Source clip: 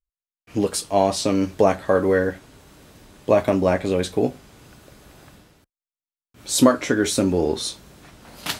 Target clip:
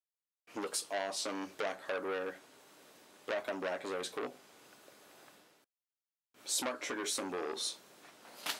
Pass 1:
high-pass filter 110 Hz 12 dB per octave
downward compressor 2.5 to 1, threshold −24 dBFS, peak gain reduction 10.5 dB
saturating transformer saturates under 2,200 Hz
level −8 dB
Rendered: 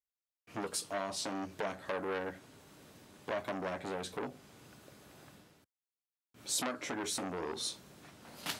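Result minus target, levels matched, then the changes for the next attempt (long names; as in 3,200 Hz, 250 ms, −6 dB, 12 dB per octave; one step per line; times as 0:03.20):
125 Hz band +10.5 dB
change: high-pass filter 380 Hz 12 dB per octave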